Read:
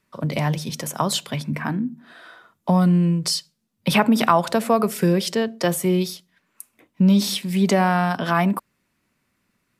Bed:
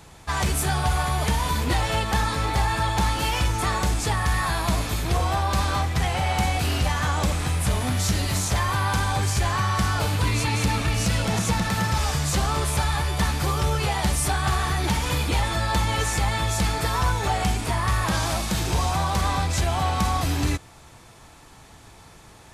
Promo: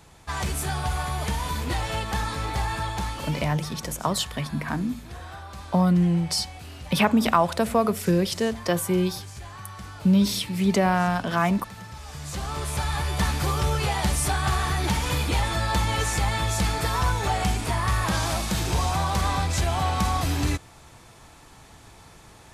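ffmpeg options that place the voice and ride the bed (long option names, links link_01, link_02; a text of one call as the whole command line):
ffmpeg -i stem1.wav -i stem2.wav -filter_complex "[0:a]adelay=3050,volume=-3dB[link_01];[1:a]volume=11.5dB,afade=type=out:start_time=2.74:duration=0.85:silence=0.237137,afade=type=in:start_time=12.04:duration=1.18:silence=0.158489[link_02];[link_01][link_02]amix=inputs=2:normalize=0" out.wav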